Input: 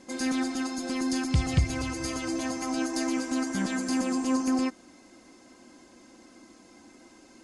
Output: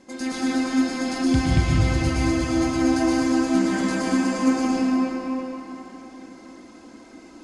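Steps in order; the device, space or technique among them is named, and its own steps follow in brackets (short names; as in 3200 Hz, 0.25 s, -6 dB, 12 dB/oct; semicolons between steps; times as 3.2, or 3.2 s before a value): swimming-pool hall (reverb RT60 4.0 s, pre-delay 0.105 s, DRR -7 dB; high shelf 5400 Hz -6 dB)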